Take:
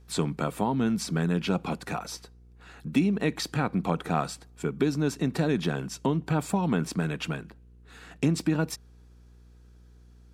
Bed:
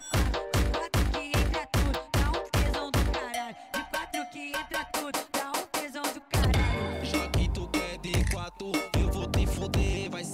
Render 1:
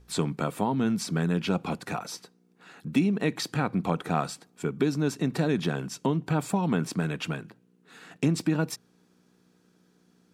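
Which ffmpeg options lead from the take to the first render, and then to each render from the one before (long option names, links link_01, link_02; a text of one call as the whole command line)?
ffmpeg -i in.wav -af "bandreject=frequency=60:width_type=h:width=4,bandreject=frequency=120:width_type=h:width=4" out.wav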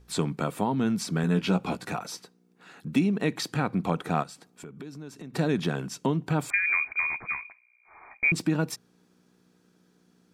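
ffmpeg -i in.wav -filter_complex "[0:a]asettb=1/sr,asplit=3[link_01][link_02][link_03];[link_01]atrim=end=1.224[link_04];[link_02]atrim=start=1.22:end=1.9,asetpts=PTS-STARTPTS,afade=type=in:duration=0.004:curve=qsin,afade=type=out:start_time=0.676:duration=0.004:curve=qsin,asplit=2[link_05][link_06];[link_06]adelay=16,volume=-5dB[link_07];[link_05][link_07]amix=inputs=2:normalize=0,atrim=end_sample=29988[link_08];[link_03]atrim=start=1.896[link_09];[link_04][link_08]acrossfade=duration=0.004:curve1=hsin:curve2=qsin[link_10];[link_10][link_09]acrossfade=duration=0.004:curve1=qsin:curve2=hsin,asplit=3[link_11][link_12][link_13];[link_11]afade=type=out:start_time=4.22:duration=0.02[link_14];[link_12]acompressor=threshold=-43dB:ratio=3:attack=3.2:release=140:knee=1:detection=peak,afade=type=in:start_time=4.22:duration=0.02,afade=type=out:start_time=5.33:duration=0.02[link_15];[link_13]afade=type=in:start_time=5.33:duration=0.02[link_16];[link_14][link_15][link_16]amix=inputs=3:normalize=0,asettb=1/sr,asplit=3[link_17][link_18][link_19];[link_17]atrim=end=6.504[link_20];[link_18]atrim=start=6.5:end=8.32,asetpts=PTS-STARTPTS,afade=type=in:duration=0.004:curve=qsin,afade=type=out:start_time=1.816:duration=0.004:curve=qsin,lowpass=frequency=2200:width_type=q:width=0.5098,lowpass=frequency=2200:width_type=q:width=0.6013,lowpass=frequency=2200:width_type=q:width=0.9,lowpass=frequency=2200:width_type=q:width=2.563,afreqshift=-2600[link_21];[link_19]atrim=start=8.316[link_22];[link_20][link_21]acrossfade=duration=0.004:curve1=hsin:curve2=qsin[link_23];[link_23][link_22]acrossfade=duration=0.004:curve1=qsin:curve2=hsin" out.wav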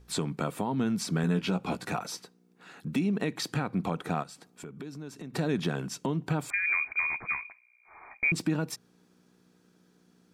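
ffmpeg -i in.wav -af "alimiter=limit=-18dB:level=0:latency=1:release=243" out.wav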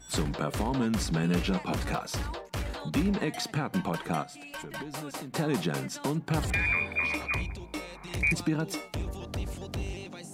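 ffmpeg -i in.wav -i bed.wav -filter_complex "[1:a]volume=-8dB[link_01];[0:a][link_01]amix=inputs=2:normalize=0" out.wav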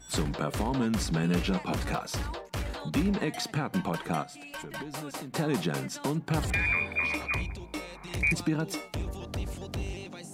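ffmpeg -i in.wav -af anull out.wav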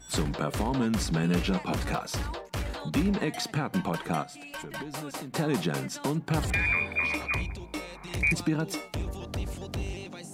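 ffmpeg -i in.wav -af "volume=1dB" out.wav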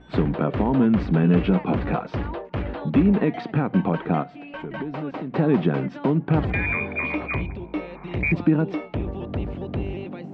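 ffmpeg -i in.wav -af "lowpass=frequency=3000:width=0.5412,lowpass=frequency=3000:width=1.3066,equalizer=frequency=270:width=0.36:gain=9.5" out.wav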